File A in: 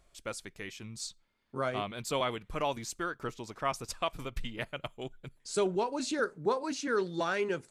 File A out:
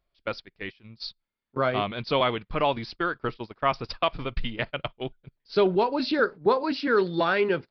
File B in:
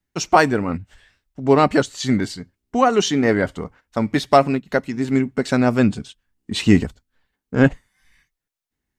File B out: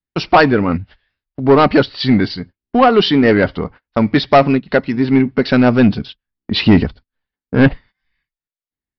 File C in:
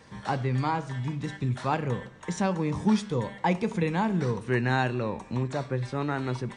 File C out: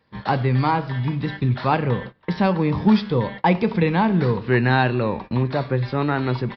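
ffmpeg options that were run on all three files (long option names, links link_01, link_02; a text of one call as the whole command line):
ffmpeg -i in.wav -af "agate=range=-20dB:threshold=-41dB:ratio=16:detection=peak,aresample=11025,asoftclip=type=tanh:threshold=-10.5dB,aresample=44100,volume=8dB" out.wav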